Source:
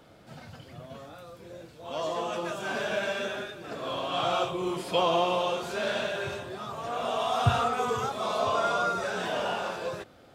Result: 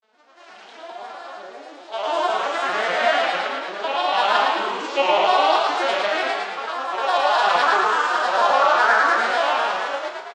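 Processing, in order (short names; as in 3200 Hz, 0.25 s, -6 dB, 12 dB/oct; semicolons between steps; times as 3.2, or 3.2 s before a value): arpeggiated vocoder bare fifth, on G#3, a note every 0.228 s; grains, pitch spread up and down by 3 st; HPF 850 Hz 12 dB/oct; bell 4400 Hz +3 dB 2.3 oct; frequency-shifting echo 0.111 s, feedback 57%, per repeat +45 Hz, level -3 dB; AGC gain up to 14 dB; flutter echo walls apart 5.9 m, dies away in 0.27 s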